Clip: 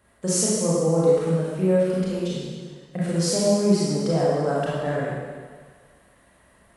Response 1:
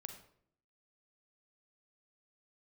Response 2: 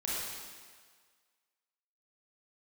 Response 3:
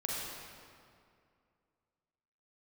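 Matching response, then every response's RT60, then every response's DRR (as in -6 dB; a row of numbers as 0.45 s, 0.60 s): 2; 0.65 s, 1.7 s, 2.3 s; 5.5 dB, -7.5 dB, -4.5 dB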